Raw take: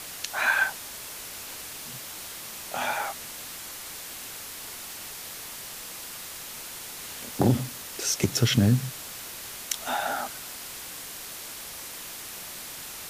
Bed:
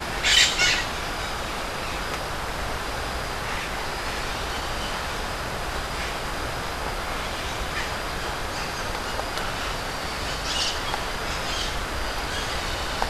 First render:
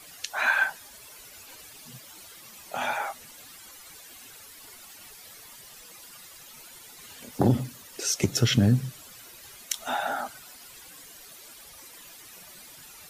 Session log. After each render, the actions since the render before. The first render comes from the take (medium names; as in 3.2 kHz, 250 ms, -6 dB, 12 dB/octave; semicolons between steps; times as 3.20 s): noise reduction 13 dB, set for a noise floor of -40 dBFS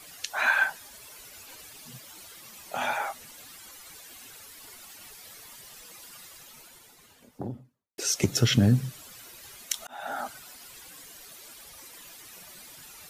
6.21–7.98 s: studio fade out; 9.87–10.27 s: fade in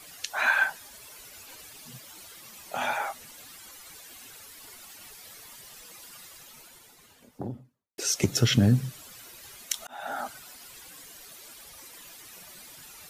no audible change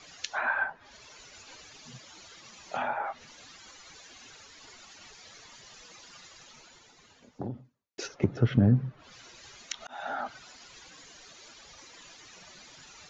low-pass that closes with the level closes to 1.2 kHz, closed at -25.5 dBFS; Chebyshev low-pass 7.1 kHz, order 8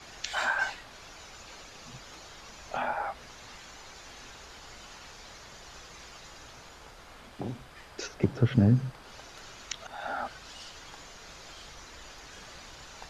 add bed -22 dB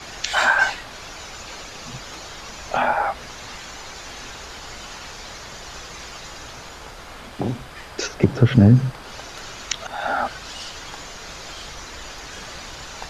trim +11.5 dB; peak limiter -3 dBFS, peak gain reduction 3 dB